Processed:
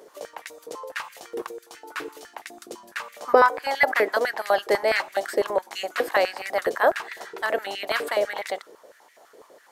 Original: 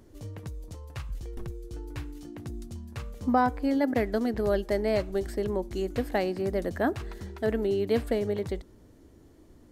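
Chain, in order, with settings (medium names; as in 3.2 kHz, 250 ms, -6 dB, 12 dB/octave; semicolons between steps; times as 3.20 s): spectral peaks clipped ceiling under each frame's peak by 14 dB; step-sequenced high-pass 12 Hz 450–2000 Hz; trim +2.5 dB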